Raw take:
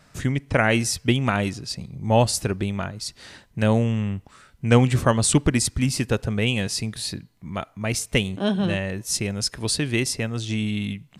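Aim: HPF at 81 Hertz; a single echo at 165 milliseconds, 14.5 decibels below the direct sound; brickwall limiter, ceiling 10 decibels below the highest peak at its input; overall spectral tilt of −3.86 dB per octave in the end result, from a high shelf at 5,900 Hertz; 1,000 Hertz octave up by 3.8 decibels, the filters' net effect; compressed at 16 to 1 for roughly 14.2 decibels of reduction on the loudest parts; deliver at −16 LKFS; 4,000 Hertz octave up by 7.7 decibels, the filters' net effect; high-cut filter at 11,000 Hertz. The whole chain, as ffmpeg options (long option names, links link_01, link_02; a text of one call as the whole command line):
ffmpeg -i in.wav -af "highpass=81,lowpass=11000,equalizer=frequency=1000:width_type=o:gain=4.5,equalizer=frequency=4000:width_type=o:gain=6.5,highshelf=frequency=5900:gain=8.5,acompressor=threshold=-25dB:ratio=16,alimiter=limit=-23dB:level=0:latency=1,aecho=1:1:165:0.188,volume=17dB" out.wav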